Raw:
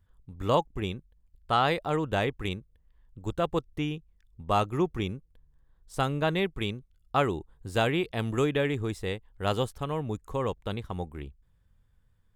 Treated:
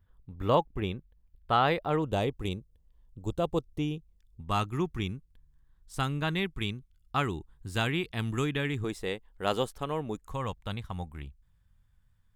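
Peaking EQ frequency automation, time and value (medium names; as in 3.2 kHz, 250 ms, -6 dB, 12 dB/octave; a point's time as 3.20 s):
peaking EQ -11 dB 1.1 oct
7.5 kHz
from 2.02 s 1.7 kHz
from 4.41 s 550 Hz
from 8.84 s 92 Hz
from 10.25 s 400 Hz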